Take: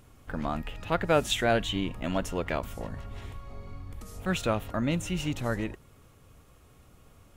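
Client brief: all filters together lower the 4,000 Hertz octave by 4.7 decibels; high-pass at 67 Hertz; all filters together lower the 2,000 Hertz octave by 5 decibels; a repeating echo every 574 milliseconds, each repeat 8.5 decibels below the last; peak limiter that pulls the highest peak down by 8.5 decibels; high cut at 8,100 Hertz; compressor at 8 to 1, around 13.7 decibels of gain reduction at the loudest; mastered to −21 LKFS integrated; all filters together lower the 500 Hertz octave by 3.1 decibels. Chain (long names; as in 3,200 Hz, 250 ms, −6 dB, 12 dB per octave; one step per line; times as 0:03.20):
high-pass filter 67 Hz
low-pass filter 8,100 Hz
parametric band 500 Hz −3.5 dB
parametric band 2,000 Hz −6 dB
parametric band 4,000 Hz −3.5 dB
downward compressor 8 to 1, threshold −36 dBFS
brickwall limiter −34.5 dBFS
repeating echo 574 ms, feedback 38%, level −8.5 dB
level +24 dB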